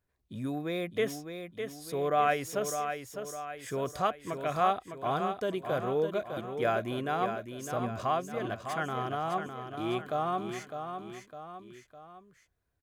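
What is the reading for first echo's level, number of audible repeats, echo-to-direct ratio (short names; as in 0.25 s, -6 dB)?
-7.5 dB, 3, -6.5 dB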